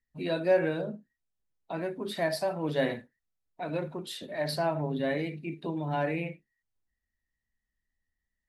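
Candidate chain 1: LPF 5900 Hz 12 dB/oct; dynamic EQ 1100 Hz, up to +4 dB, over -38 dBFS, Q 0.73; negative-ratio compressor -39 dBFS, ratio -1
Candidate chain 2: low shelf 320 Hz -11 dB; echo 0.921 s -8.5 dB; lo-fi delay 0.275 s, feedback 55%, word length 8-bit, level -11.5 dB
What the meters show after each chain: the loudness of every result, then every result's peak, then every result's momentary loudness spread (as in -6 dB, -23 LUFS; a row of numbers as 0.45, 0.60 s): -38.0, -35.0 LUFS; -21.5, -17.0 dBFS; 8, 12 LU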